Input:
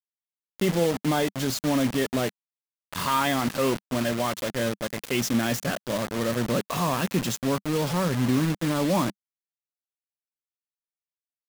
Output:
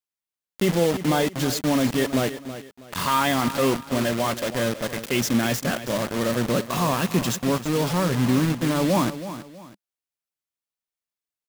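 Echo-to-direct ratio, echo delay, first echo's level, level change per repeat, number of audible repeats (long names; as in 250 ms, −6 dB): −12.0 dB, 323 ms, −12.5 dB, −10.0 dB, 2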